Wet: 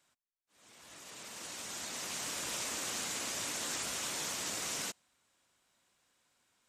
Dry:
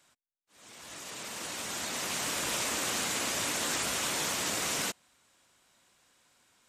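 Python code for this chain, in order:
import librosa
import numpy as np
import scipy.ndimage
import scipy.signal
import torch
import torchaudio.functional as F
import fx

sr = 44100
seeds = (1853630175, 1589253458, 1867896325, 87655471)

y = fx.dynamic_eq(x, sr, hz=6200.0, q=0.93, threshold_db=-44.0, ratio=4.0, max_db=4)
y = y * 10.0 ** (-8.0 / 20.0)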